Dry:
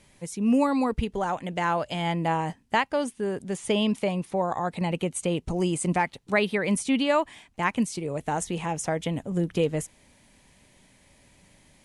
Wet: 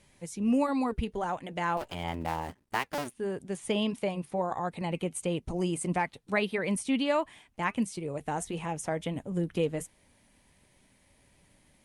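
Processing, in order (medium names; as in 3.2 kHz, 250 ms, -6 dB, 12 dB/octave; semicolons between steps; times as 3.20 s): 1.77–3.13 s: cycle switcher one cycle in 2, muted; flange 1.5 Hz, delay 1.7 ms, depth 2.4 ms, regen -79%; Opus 48 kbps 48 kHz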